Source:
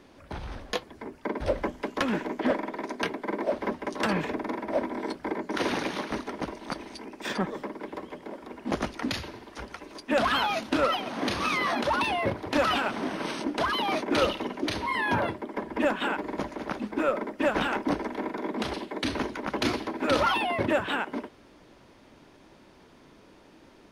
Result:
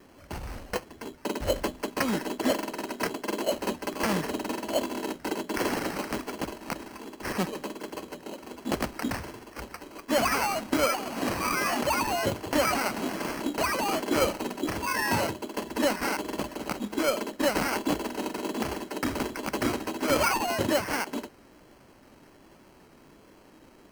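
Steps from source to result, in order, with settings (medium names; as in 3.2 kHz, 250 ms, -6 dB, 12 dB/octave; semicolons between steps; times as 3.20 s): low-pass that closes with the level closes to 2.5 kHz, closed at -22 dBFS; sample-rate reducer 3.6 kHz, jitter 0%; vibrato 1.3 Hz 35 cents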